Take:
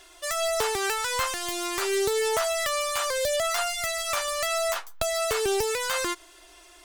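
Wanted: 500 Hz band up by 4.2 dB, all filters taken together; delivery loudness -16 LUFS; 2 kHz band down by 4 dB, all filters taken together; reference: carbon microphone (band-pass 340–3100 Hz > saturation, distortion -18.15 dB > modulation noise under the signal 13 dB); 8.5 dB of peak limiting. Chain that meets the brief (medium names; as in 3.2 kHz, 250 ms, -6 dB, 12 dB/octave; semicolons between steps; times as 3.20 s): peaking EQ 500 Hz +7 dB; peaking EQ 2 kHz -4.5 dB; peak limiter -19 dBFS; band-pass 340–3100 Hz; saturation -24 dBFS; modulation noise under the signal 13 dB; trim +14 dB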